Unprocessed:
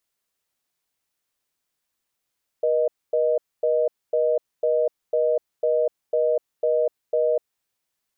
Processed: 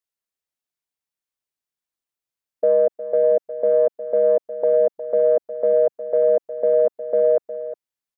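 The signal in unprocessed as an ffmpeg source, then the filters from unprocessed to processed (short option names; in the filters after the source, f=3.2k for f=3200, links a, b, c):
-f lavfi -i "aevalsrc='0.0944*(sin(2*PI*480*t)+sin(2*PI*620*t))*clip(min(mod(t,0.5),0.25-mod(t,0.5))/0.005,0,1)':d=4.98:s=44100"
-af "afwtdn=0.0224,acontrast=35,aecho=1:1:359:0.211"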